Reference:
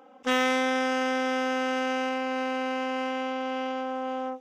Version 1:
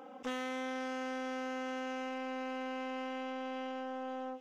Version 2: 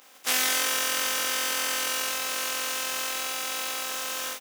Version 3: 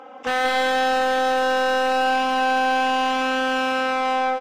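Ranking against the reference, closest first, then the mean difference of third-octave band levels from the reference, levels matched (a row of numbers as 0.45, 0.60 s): 1, 3, 2; 2.0, 5.0, 15.0 dB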